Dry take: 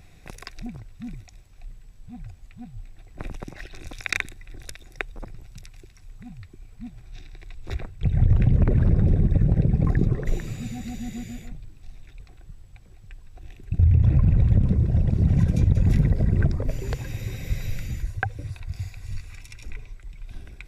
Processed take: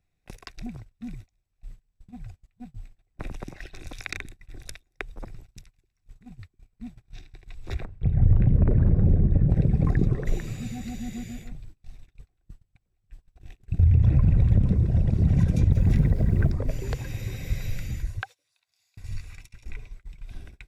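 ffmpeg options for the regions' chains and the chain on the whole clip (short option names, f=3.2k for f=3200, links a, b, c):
-filter_complex "[0:a]asettb=1/sr,asplit=3[a][b][c];[a]atrim=end=7.854[d];[b]atrim=start=7.85:end=9.5,asetpts=PTS-STARTPTS,afade=t=in:d=0.004:c=qsin,afade=t=out:st=1.646:d=0.004:c=qsin,lowpass=f=1k:p=1,asplit=2[e][f];[f]adelay=36,volume=-12dB[g];[e][g]amix=inputs=2:normalize=0,atrim=end_sample=72765[h];[c]atrim=start=9.496[i];[d][h]acrossfade=d=0.004:c1=hsin:c2=qsin[j];[j][i]acrossfade=d=0.004:c1=qsin:c2=hsin,asettb=1/sr,asplit=3[k][l][m];[k]atrim=end=15.724[n];[l]atrim=start=15.72:end=16.52,asetpts=PTS-STARTPTS,afade=t=in:d=0.004:c=qsin,afade=t=out:st=0.796:d=0.004:c=qsin,highshelf=f=4.7k:g=-5,acrusher=bits=8:mix=0:aa=0.5[o];[m]atrim=start=16.516[p];[n][o]acrossfade=d=0.004:c1=hsin:c2=qsin[q];[q][p]acrossfade=d=0.004:c1=qsin:c2=hsin,asettb=1/sr,asplit=3[r][s][t];[r]atrim=end=18.224[u];[s]atrim=start=18.22:end=18.97,asetpts=PTS-STARTPTS,afade=t=in:d=0.004:c=qsin,afade=t=out:st=0.746:d=0.004:c=qsin,highpass=860,highshelf=f=2.7k:t=q:w=1.5:g=6[v];[t]atrim=start=18.966[w];[u][v]acrossfade=d=0.004:c1=hsin:c2=qsin[x];[x][w]acrossfade=d=0.004:c1=qsin:c2=hsin,acrossover=split=470[y][z];[z]acompressor=threshold=-29dB:ratio=6[aa];[y][aa]amix=inputs=2:normalize=0,agate=range=-25dB:threshold=-39dB:ratio=16:detection=peak,volume=-1dB"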